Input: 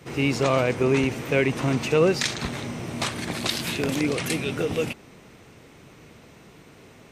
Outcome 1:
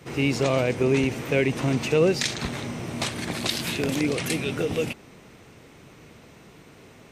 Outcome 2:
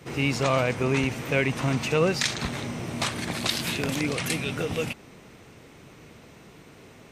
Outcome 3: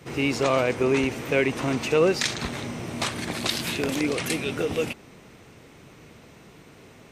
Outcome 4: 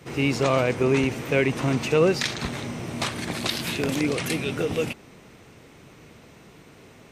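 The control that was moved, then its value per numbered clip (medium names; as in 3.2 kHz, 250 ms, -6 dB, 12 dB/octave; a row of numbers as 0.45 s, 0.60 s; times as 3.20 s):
dynamic bell, frequency: 1.2 kHz, 370 Hz, 140 Hz, 7.6 kHz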